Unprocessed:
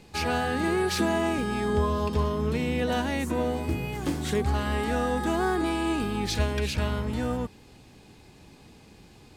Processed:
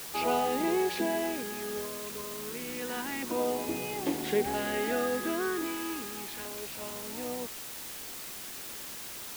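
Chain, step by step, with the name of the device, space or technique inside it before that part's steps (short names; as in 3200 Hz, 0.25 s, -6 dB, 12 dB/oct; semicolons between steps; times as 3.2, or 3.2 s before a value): shortwave radio (BPF 330–2700 Hz; tremolo 0.23 Hz, depth 74%; LFO notch saw down 0.31 Hz 560–1900 Hz; white noise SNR 8 dB); gain +2.5 dB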